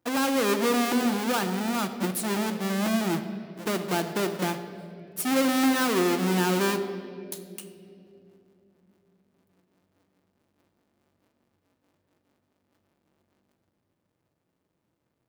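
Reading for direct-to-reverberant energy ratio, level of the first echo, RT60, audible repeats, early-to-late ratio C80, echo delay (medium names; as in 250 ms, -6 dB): 7.0 dB, no echo, 2.9 s, no echo, 10.5 dB, no echo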